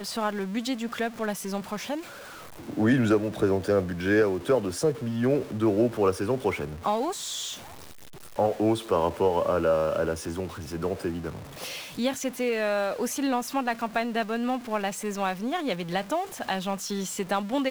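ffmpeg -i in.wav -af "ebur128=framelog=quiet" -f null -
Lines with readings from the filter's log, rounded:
Integrated loudness:
  I:         -27.5 LUFS
  Threshold: -37.7 LUFS
Loudness range:
  LRA:         4.4 LU
  Threshold: -47.4 LUFS
  LRA low:   -29.5 LUFS
  LRA high:  -25.1 LUFS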